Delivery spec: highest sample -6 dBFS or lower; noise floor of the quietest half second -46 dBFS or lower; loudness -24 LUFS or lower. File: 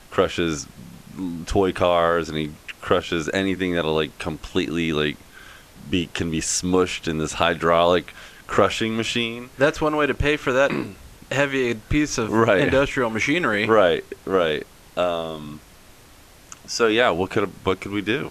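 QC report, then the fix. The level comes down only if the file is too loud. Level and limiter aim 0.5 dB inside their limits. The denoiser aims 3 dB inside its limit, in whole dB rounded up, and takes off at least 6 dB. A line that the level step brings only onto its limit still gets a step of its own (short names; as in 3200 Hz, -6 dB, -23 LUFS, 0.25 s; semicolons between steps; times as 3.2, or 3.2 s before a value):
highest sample -3.5 dBFS: fail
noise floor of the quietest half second -48 dBFS: OK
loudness -22.0 LUFS: fail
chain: gain -2.5 dB; limiter -6.5 dBFS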